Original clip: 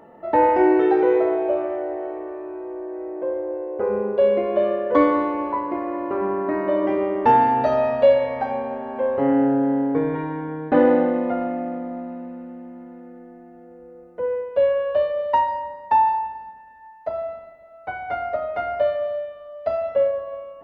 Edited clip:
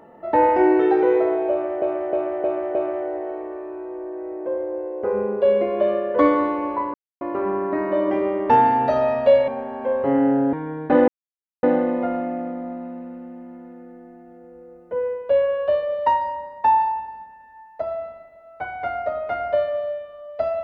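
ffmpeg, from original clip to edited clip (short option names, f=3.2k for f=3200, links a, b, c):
-filter_complex "[0:a]asplit=10[a][b][c][d][e][f][g][h][i][j];[a]atrim=end=1.822[k];[b]atrim=start=1.508:end=1.822[l];[c]atrim=start=1.508:end=1.822[m];[d]atrim=start=1.508:end=1.822[n];[e]atrim=start=1.508:end=5.7,asetpts=PTS-STARTPTS,afade=t=out:st=4.188:d=0.004:c=hsin[o];[f]atrim=start=5.7:end=5.97,asetpts=PTS-STARTPTS,volume=0[p];[g]atrim=start=5.97:end=8.242,asetpts=PTS-STARTPTS,afade=t=in:d=0.004:c=hsin[q];[h]atrim=start=8.618:end=9.672[r];[i]atrim=start=10.348:end=10.9,asetpts=PTS-STARTPTS,afade=t=out:st=0.548:d=0.004:c=hsin,apad=pad_dur=0.55[s];[j]atrim=start=10.9,asetpts=PTS-STARTPTS,afade=t=in:d=0.004:c=hsin[t];[k][l]acrossfade=d=0.004:c1=hsin:c2=hsin[u];[u][m]acrossfade=d=0.004:c1=hsin:c2=hsin[v];[v][n]acrossfade=d=0.004:c1=hsin:c2=hsin[w];[o][p][q]concat=n=3:v=0:a=1[x];[w][x]acrossfade=d=0.004:c1=hsin:c2=hsin[y];[y][r]acrossfade=d=0.004:c1=hsin:c2=hsin[z];[s][t]concat=n=2:v=0:a=1[aa];[z][aa]acrossfade=d=0.004:c1=hsin:c2=hsin"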